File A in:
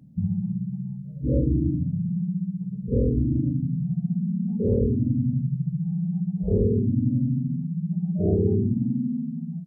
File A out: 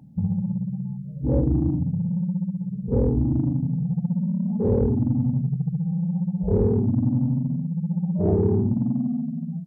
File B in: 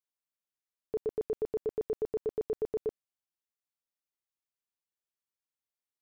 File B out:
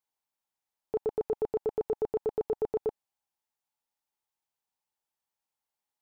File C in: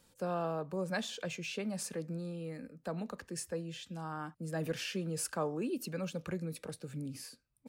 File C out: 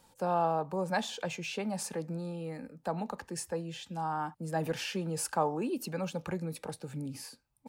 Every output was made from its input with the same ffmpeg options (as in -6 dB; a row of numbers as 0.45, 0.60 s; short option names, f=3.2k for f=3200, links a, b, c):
-filter_complex "[0:a]asplit=2[a][b];[b]asoftclip=type=tanh:threshold=-25dB,volume=-11dB[c];[a][c]amix=inputs=2:normalize=0,equalizer=f=850:w=3.4:g=13"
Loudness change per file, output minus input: +1.5, +2.5, +4.0 LU